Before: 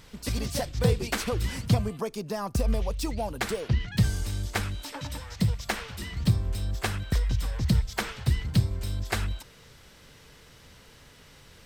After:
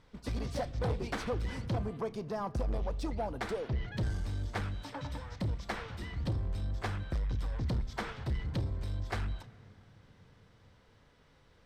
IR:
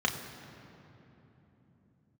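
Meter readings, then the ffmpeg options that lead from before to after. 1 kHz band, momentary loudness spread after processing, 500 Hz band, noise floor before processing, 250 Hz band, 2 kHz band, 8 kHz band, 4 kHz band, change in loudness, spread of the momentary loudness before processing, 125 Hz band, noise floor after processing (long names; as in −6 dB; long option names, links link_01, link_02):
−4.5 dB, 5 LU, −5.0 dB, −53 dBFS, −8.0 dB, −8.0 dB, −16.5 dB, −11.5 dB, −7.5 dB, 7 LU, −8.0 dB, −63 dBFS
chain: -filter_complex "[0:a]agate=range=-7dB:threshold=-41dB:ratio=16:detection=peak,aemphasis=mode=reproduction:type=75fm,asoftclip=type=tanh:threshold=-24.5dB,asplit=2[link_01][link_02];[1:a]atrim=start_sample=2205,lowshelf=frequency=130:gain=-9.5[link_03];[link_02][link_03]afir=irnorm=-1:irlink=0,volume=-20dB[link_04];[link_01][link_04]amix=inputs=2:normalize=0,volume=-3.5dB"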